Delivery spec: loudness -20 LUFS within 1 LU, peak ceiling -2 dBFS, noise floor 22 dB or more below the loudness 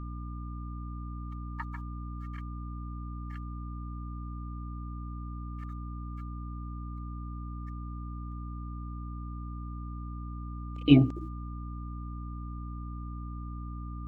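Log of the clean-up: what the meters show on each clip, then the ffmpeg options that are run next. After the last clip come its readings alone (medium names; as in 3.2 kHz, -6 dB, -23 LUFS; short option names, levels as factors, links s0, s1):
hum 60 Hz; highest harmonic 300 Hz; hum level -36 dBFS; steady tone 1.2 kHz; tone level -48 dBFS; loudness -35.5 LUFS; peak level -6.0 dBFS; loudness target -20.0 LUFS
-> -af "bandreject=f=60:t=h:w=4,bandreject=f=120:t=h:w=4,bandreject=f=180:t=h:w=4,bandreject=f=240:t=h:w=4,bandreject=f=300:t=h:w=4"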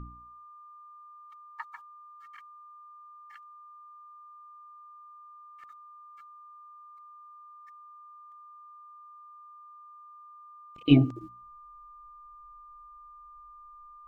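hum not found; steady tone 1.2 kHz; tone level -48 dBFS
-> -af "bandreject=f=1200:w=30"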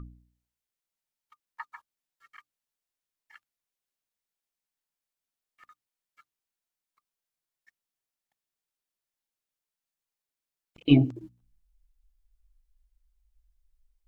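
steady tone not found; loudness -24.0 LUFS; peak level -6.5 dBFS; loudness target -20.0 LUFS
-> -af "volume=1.58"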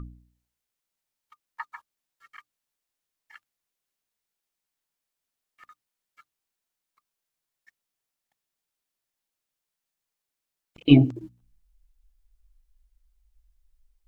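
loudness -20.0 LUFS; peak level -2.5 dBFS; noise floor -86 dBFS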